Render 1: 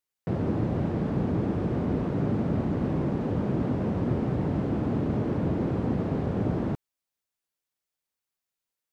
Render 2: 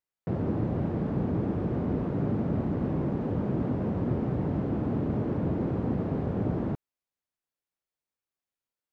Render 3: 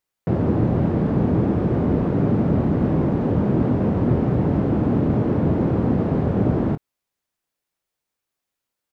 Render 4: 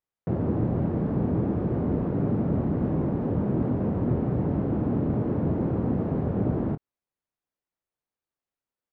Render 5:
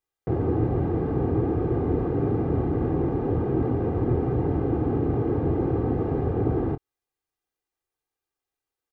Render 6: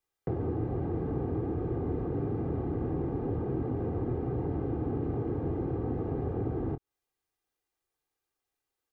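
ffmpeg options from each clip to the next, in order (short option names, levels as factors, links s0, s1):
-af "highshelf=f=2600:g=-8.5,volume=0.841"
-filter_complex "[0:a]asplit=2[s0][s1];[s1]adelay=25,volume=0.224[s2];[s0][s2]amix=inputs=2:normalize=0,volume=2.82"
-af "highshelf=f=2600:g=-12,volume=0.501"
-af "aecho=1:1:2.5:0.67,volume=1.19"
-filter_complex "[0:a]acrossover=split=260|1100[s0][s1][s2];[s0]acompressor=threshold=0.02:ratio=4[s3];[s1]acompressor=threshold=0.0141:ratio=4[s4];[s2]acompressor=threshold=0.00112:ratio=4[s5];[s3][s4][s5]amix=inputs=3:normalize=0,volume=1.12"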